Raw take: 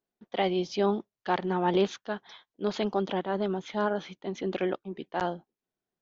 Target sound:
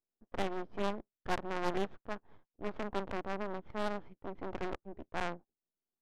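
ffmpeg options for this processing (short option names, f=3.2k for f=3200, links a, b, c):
-filter_complex "[0:a]lowpass=1.8k,equalizer=f=250:t=o:w=1.3:g=7.5,asplit=2[a][b];[b]aeval=exprs='0.0422*(abs(mod(val(0)/0.0422+3,4)-2)-1)':c=same,volume=-3dB[c];[a][c]amix=inputs=2:normalize=0,aderivative,aeval=exprs='max(val(0),0)':c=same,adynamicsmooth=sensitivity=7:basefreq=620,volume=15dB"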